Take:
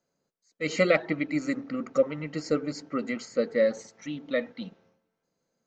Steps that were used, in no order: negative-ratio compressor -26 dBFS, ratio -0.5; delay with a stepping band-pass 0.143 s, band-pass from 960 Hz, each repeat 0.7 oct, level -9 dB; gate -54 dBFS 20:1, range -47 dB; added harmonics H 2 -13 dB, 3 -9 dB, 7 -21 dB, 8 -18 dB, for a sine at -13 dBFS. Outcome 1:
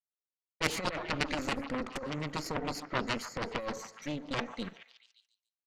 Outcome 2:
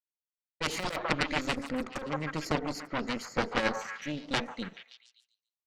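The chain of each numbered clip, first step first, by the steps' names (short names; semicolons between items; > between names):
gate > negative-ratio compressor > added harmonics > delay with a stepping band-pass; gate > added harmonics > delay with a stepping band-pass > negative-ratio compressor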